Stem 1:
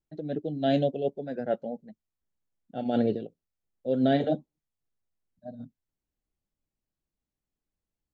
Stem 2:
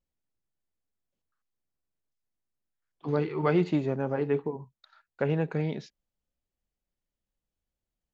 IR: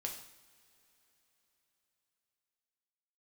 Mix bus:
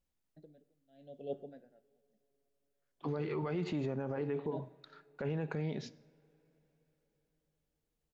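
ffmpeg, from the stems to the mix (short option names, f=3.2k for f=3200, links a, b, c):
-filter_complex "[0:a]aeval=exprs='val(0)*pow(10,-37*(0.5-0.5*cos(2*PI*0.9*n/s))/20)':c=same,adelay=250,volume=-12.5dB,asplit=2[a][b];[b]volume=-6dB[c];[1:a]volume=0dB,asplit=2[d][e];[e]volume=-14dB[f];[2:a]atrim=start_sample=2205[g];[c][f]amix=inputs=2:normalize=0[h];[h][g]afir=irnorm=-1:irlink=0[i];[a][d][i]amix=inputs=3:normalize=0,alimiter=level_in=4dB:limit=-24dB:level=0:latency=1:release=83,volume=-4dB"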